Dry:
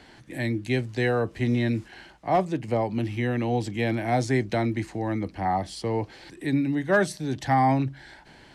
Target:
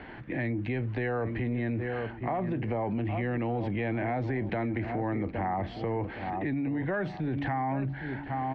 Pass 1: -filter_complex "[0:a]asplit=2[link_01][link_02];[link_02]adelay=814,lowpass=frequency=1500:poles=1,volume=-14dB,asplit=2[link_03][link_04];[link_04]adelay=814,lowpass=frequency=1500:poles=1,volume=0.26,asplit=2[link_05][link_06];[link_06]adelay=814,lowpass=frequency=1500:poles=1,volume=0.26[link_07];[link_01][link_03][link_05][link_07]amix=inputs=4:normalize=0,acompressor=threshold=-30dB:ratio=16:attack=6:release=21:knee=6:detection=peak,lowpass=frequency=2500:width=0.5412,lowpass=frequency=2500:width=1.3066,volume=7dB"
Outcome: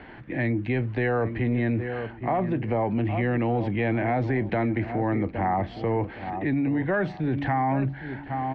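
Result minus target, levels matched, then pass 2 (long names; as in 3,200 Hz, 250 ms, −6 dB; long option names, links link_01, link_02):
downward compressor: peak gain reduction −6 dB
-filter_complex "[0:a]asplit=2[link_01][link_02];[link_02]adelay=814,lowpass=frequency=1500:poles=1,volume=-14dB,asplit=2[link_03][link_04];[link_04]adelay=814,lowpass=frequency=1500:poles=1,volume=0.26,asplit=2[link_05][link_06];[link_06]adelay=814,lowpass=frequency=1500:poles=1,volume=0.26[link_07];[link_01][link_03][link_05][link_07]amix=inputs=4:normalize=0,acompressor=threshold=-36.5dB:ratio=16:attack=6:release=21:knee=6:detection=peak,lowpass=frequency=2500:width=0.5412,lowpass=frequency=2500:width=1.3066,volume=7dB"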